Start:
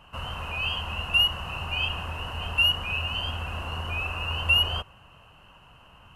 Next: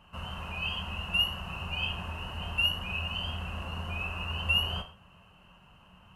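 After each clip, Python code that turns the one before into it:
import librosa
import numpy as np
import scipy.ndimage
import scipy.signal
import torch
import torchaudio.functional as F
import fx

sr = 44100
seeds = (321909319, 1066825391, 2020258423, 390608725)

y = fx.peak_eq(x, sr, hz=180.0, db=9.5, octaves=0.52)
y = fx.rev_gated(y, sr, seeds[0], gate_ms=160, shape='falling', drr_db=5.0)
y = F.gain(torch.from_numpy(y), -6.5).numpy()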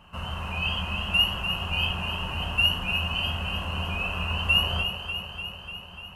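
y = fx.echo_alternate(x, sr, ms=148, hz=1000.0, feedback_pct=83, wet_db=-6.5)
y = F.gain(torch.from_numpy(y), 5.0).numpy()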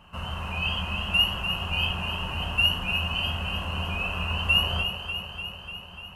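y = x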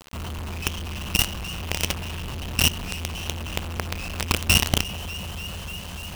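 y = fx.low_shelf(x, sr, hz=450.0, db=11.0)
y = fx.quant_companded(y, sr, bits=2)
y = F.gain(torch.from_numpy(y), -6.5).numpy()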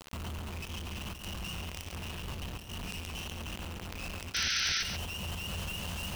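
y = fx.over_compress(x, sr, threshold_db=-34.0, ratio=-1.0)
y = fx.spec_paint(y, sr, seeds[1], shape='noise', start_s=4.34, length_s=0.49, low_hz=1300.0, high_hz=6200.0, level_db=-24.0)
y = y + 10.0 ** (-8.0 / 20.0) * np.pad(y, (int(139 * sr / 1000.0), 0))[:len(y)]
y = F.gain(torch.from_numpy(y), -7.5).numpy()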